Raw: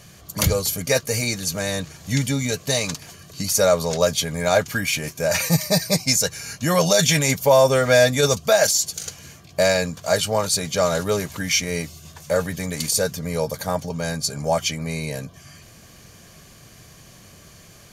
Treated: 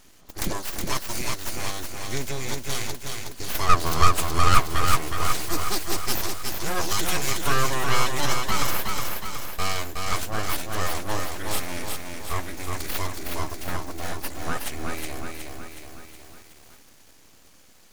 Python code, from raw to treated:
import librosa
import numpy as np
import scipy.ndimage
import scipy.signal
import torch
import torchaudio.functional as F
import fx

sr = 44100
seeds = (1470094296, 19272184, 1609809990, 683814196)

y = fx.graphic_eq_15(x, sr, hz=(250, 630, 4000, 10000), db=(5, 11, 7, 5), at=(3.69, 5.24))
y = np.abs(y)
y = fx.echo_crushed(y, sr, ms=368, feedback_pct=55, bits=7, wet_db=-4.0)
y = y * librosa.db_to_amplitude(-5.5)